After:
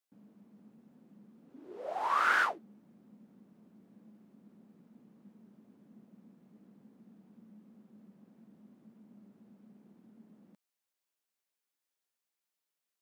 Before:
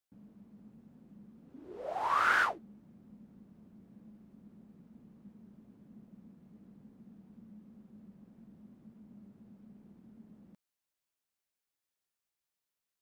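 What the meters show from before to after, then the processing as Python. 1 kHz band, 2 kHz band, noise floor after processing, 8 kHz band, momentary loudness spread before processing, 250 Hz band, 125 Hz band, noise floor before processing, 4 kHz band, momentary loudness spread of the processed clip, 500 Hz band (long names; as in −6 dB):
0.0 dB, 0.0 dB, below −85 dBFS, 0.0 dB, 20 LU, −2.5 dB, −5.0 dB, below −85 dBFS, 0.0 dB, 18 LU, 0.0 dB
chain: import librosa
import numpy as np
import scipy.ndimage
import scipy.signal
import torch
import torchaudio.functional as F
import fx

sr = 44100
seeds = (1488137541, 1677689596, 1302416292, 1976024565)

y = scipy.signal.sosfilt(scipy.signal.butter(2, 210.0, 'highpass', fs=sr, output='sos'), x)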